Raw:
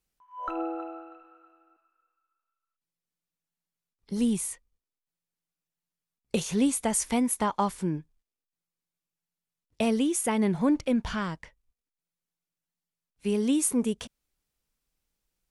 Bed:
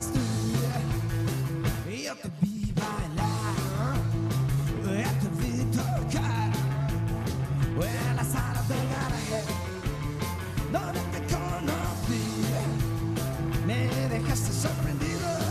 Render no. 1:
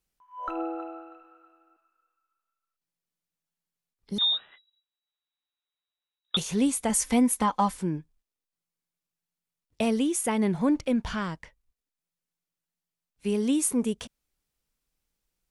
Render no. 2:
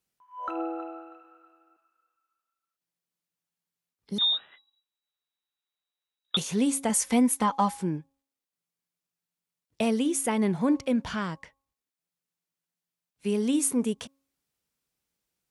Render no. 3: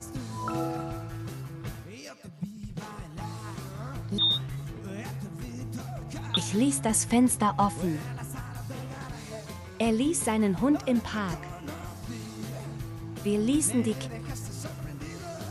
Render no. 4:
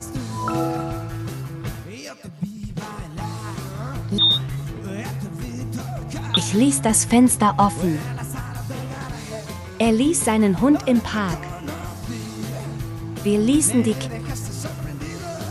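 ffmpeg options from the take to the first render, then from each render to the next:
-filter_complex "[0:a]asettb=1/sr,asplit=3[s0][s1][s2];[s0]atrim=end=4.184[s3];[s1]atrim=start=4.18:end=6.37,asetpts=PTS-STARTPTS,afade=t=in:d=0.004:c=qsin,afade=t=out:st=2.186:d=0.004:c=qsin,lowpass=f=3300:t=q:w=0.5098,lowpass=f=3300:t=q:w=0.6013,lowpass=f=3300:t=q:w=0.9,lowpass=f=3300:t=q:w=2.563,afreqshift=-3900[s4];[s2]atrim=start=6.366[s5];[s3][s4]acrossfade=d=0.004:c1=hsin:c2=qsin[s6];[s6][s5]acrossfade=d=0.004:c1=qsin:c2=hsin,asettb=1/sr,asplit=3[s7][s8][s9];[s7]atrim=end=6.894[s10];[s8]atrim=start=6.89:end=7.77,asetpts=PTS-STARTPTS,afade=t=in:d=0.004:c=qsin,afade=t=out:st=0.876:d=0.004:c=qsin,aecho=1:1:3.9:0.65,atrim=end_sample=38808[s11];[s9]atrim=start=7.766[s12];[s10][s11]acrossfade=d=0.004:c1=hsin:c2=qsin[s13];[s13][s12]acrossfade=d=0.004:c1=qsin:c2=hsin"
-af "highpass=93,bandreject=f=273.4:t=h:w=4,bandreject=f=546.8:t=h:w=4,bandreject=f=820.2:t=h:w=4,bandreject=f=1093.6:t=h:w=4"
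-filter_complex "[1:a]volume=0.335[s0];[0:a][s0]amix=inputs=2:normalize=0"
-af "volume=2.51"

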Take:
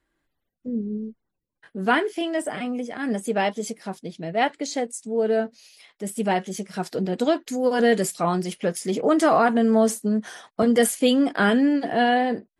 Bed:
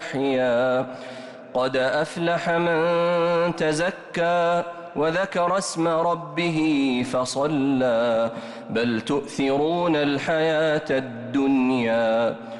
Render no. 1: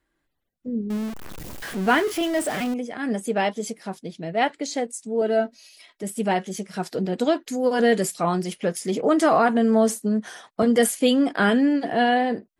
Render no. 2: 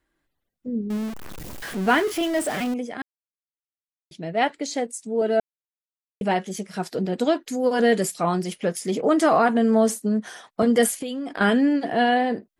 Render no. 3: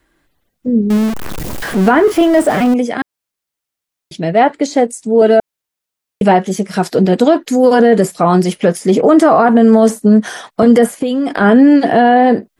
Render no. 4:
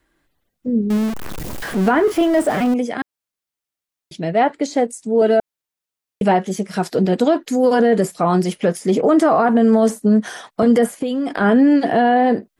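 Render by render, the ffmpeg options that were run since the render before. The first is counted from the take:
-filter_complex "[0:a]asettb=1/sr,asplit=3[s0][s1][s2];[s0]atrim=end=0.904[s3];[s1]atrim=start=0.9:end=2.74,asetpts=PTS-STARTPTS,afade=t=in:d=0.004:c=qsin,afade=t=out:st=1.836:d=0.004:c=qsin,aeval=exprs='val(0)+0.5*0.0376*sgn(val(0))':c=same[s4];[s2]atrim=start=2.736[s5];[s3][s4]acrossfade=d=0.004:c1=hsin:c2=qsin[s6];[s6][s5]acrossfade=d=0.004:c1=qsin:c2=hsin,asettb=1/sr,asplit=3[s7][s8][s9];[s7]atrim=end=5.214[s10];[s8]atrim=start=5.21:end=6.03,asetpts=PTS-STARTPTS,afade=t=in:d=0.004:c=qsin,afade=t=out:st=0.816:d=0.004:c=qsin,aecho=1:1:3.1:0.65,atrim=end_sample=36162[s11];[s9]atrim=start=6.026[s12];[s10][s11]acrossfade=d=0.004:c1=hsin:c2=qsin[s13];[s13][s12]acrossfade=d=0.004:c1=qsin:c2=hsin"
-filter_complex "[0:a]asettb=1/sr,asplit=3[s0][s1][s2];[s0]atrim=end=11.004[s3];[s1]atrim=start=11:end=11.41,asetpts=PTS-STARTPTS,afade=t=in:d=0.004:c=qsin,afade=t=out:st=0.406:d=0.004:c=qsin,acompressor=threshold=0.0501:ratio=12:attack=3.2:release=140:knee=1:detection=peak[s4];[s2]atrim=start=11.406[s5];[s3][s4]acrossfade=d=0.004:c1=hsin:c2=qsin[s6];[s6][s5]acrossfade=d=0.004:c1=qsin:c2=hsin,asplit=5[s7][s8][s9][s10][s11];[s7]atrim=end=3.02,asetpts=PTS-STARTPTS,afade=t=out:st=3.016:d=0.004:c=hsin[s12];[s8]atrim=start=3.02:end=4.11,asetpts=PTS-STARTPTS,volume=0[s13];[s9]atrim=start=4.11:end=5.4,asetpts=PTS-STARTPTS,afade=t=in:d=0.004:c=hsin,afade=t=out:st=1.286:d=0.004:c=hsin[s14];[s10]atrim=start=5.4:end=6.21,asetpts=PTS-STARTPTS,volume=0[s15];[s11]atrim=start=6.21,asetpts=PTS-STARTPTS,afade=t=in:d=0.004:c=hsin[s16];[s12][s13][s14][s15][s16]concat=n=5:v=0:a=1"
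-filter_complex "[0:a]acrossover=split=890|1500[s0][s1][s2];[s2]acompressor=threshold=0.00891:ratio=6[s3];[s0][s1][s3]amix=inputs=3:normalize=0,alimiter=level_in=5.31:limit=0.891:release=50:level=0:latency=1"
-af "volume=0.531"

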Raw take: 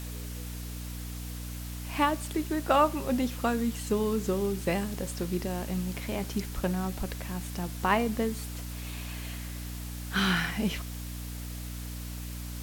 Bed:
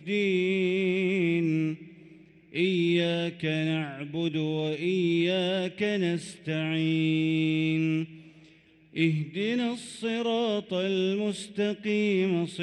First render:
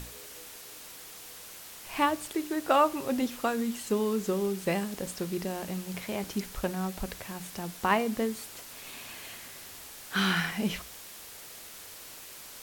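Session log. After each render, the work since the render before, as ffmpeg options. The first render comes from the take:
-af "bandreject=f=60:t=h:w=6,bandreject=f=120:t=h:w=6,bandreject=f=180:t=h:w=6,bandreject=f=240:t=h:w=6,bandreject=f=300:t=h:w=6"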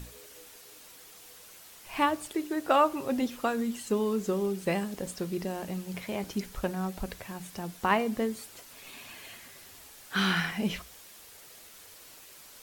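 -af "afftdn=nr=6:nf=-47"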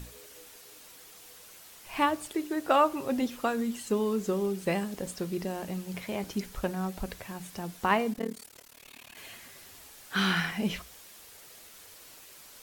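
-filter_complex "[0:a]asettb=1/sr,asplit=3[s0][s1][s2];[s0]atrim=end=8.134[s3];[s1]atrim=start=8.13:end=9.17,asetpts=PTS-STARTPTS,afade=t=in:d=0.004:c=qsin,afade=t=out:st=1.036:d=0.004:c=qsin,tremolo=f=37:d=0.974[s4];[s2]atrim=start=9.166[s5];[s3][s4]acrossfade=d=0.004:c1=hsin:c2=qsin[s6];[s6][s5]acrossfade=d=0.004:c1=qsin:c2=hsin"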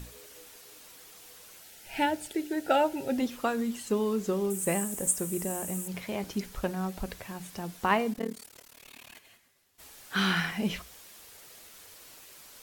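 -filter_complex "[0:a]asettb=1/sr,asplit=3[s0][s1][s2];[s0]atrim=end=1.624[s3];[s1]atrim=start=1.62:end=3.18,asetpts=PTS-STARTPTS,afade=t=in:d=0.004:c=qsin,afade=t=out:st=1.556:d=0.004:c=qsin,asuperstop=centerf=1100:order=12:qfactor=3.2[s4];[s2]atrim=start=3.176[s5];[s3][s4]acrossfade=d=0.004:c1=hsin:c2=qsin[s6];[s6][s5]acrossfade=d=0.004:c1=qsin:c2=hsin,asettb=1/sr,asplit=3[s7][s8][s9];[s7]atrim=end=4.504[s10];[s8]atrim=start=4.5:end=5.88,asetpts=PTS-STARTPTS,afade=t=in:d=0.004:c=qsin,afade=t=out:st=1.376:d=0.004:c=qsin,highshelf=f=6200:t=q:w=3:g=11[s11];[s9]atrim=start=5.876[s12];[s10][s11]acrossfade=d=0.004:c1=hsin:c2=qsin[s13];[s13][s12]acrossfade=d=0.004:c1=qsin:c2=hsin,asplit=3[s14][s15][s16];[s14]afade=t=out:st=9.17:d=0.02[s17];[s15]agate=range=0.0224:threshold=0.0112:ratio=3:release=100:detection=peak,afade=t=in:st=9.17:d=0.02,afade=t=out:st=9.78:d=0.02[s18];[s16]afade=t=in:st=9.78:d=0.02[s19];[s17][s18][s19]amix=inputs=3:normalize=0"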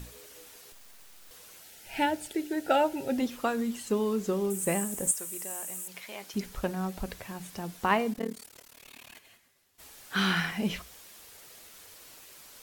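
-filter_complex "[0:a]asettb=1/sr,asplit=3[s0][s1][s2];[s0]atrim=end=0.724[s3];[s1]atrim=start=0.72:end=1.31,asetpts=PTS-STARTPTS,afade=t=in:d=0.004:c=qsin,afade=t=out:st=0.586:d=0.004:c=qsin,aeval=exprs='abs(val(0))':c=same[s4];[s2]atrim=start=1.306[s5];[s3][s4]acrossfade=d=0.004:c1=hsin:c2=qsin[s6];[s6][s5]acrossfade=d=0.004:c1=qsin:c2=hsin,asettb=1/sr,asplit=3[s7][s8][s9];[s7]atrim=end=5.114[s10];[s8]atrim=start=5.11:end=6.34,asetpts=PTS-STARTPTS,afade=t=in:d=0.004:c=qsin,afade=t=out:st=1.226:d=0.004:c=qsin,highpass=f=1400:p=1[s11];[s9]atrim=start=6.336[s12];[s10][s11]acrossfade=d=0.004:c1=hsin:c2=qsin[s13];[s13][s12]acrossfade=d=0.004:c1=qsin:c2=hsin"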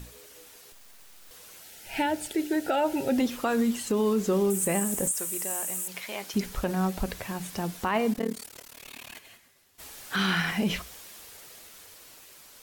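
-af "alimiter=limit=0.0708:level=0:latency=1:release=47,dynaudnorm=f=400:g=9:m=2"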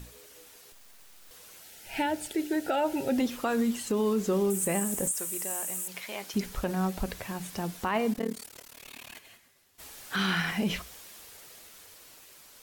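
-af "volume=0.794"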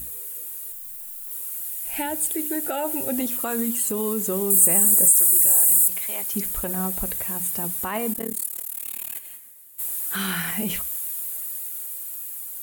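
-af "aexciter=amount=4.5:drive=9.8:freq=7800"

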